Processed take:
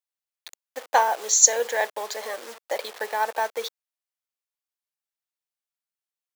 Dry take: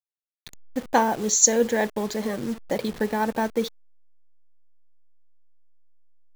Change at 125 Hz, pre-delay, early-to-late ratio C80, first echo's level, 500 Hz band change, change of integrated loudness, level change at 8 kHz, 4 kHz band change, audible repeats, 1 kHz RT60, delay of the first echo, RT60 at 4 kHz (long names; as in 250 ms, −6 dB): below −30 dB, no reverb audible, no reverb audible, no echo audible, −3.0 dB, +1.0 dB, +2.0 dB, +2.0 dB, no echo audible, no reverb audible, no echo audible, no reverb audible